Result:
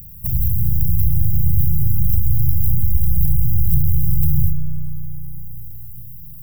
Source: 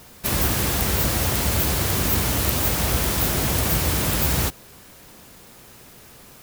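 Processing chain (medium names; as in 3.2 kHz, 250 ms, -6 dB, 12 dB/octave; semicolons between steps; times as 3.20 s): tracing distortion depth 0.25 ms; upward compressor, threshold -43 dBFS; inverse Chebyshev band-stop 290–8800 Hz, stop band 40 dB; on a send: flutter echo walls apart 6.8 m, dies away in 0.32 s; on the sum: spring tank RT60 3 s, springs 33 ms, chirp 55 ms, DRR 2.5 dB; in parallel at +2 dB: compression, threshold -34 dBFS, peak gain reduction 19 dB; on the sum: trim +4 dB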